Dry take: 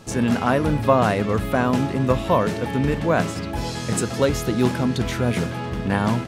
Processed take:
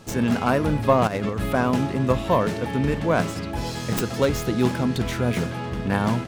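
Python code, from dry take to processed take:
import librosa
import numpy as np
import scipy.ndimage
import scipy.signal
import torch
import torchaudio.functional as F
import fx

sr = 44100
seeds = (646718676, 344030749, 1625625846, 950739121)

y = fx.tracing_dist(x, sr, depth_ms=0.15)
y = fx.over_compress(y, sr, threshold_db=-23.0, ratio=-0.5, at=(1.07, 1.54))
y = y * librosa.db_to_amplitude(-1.5)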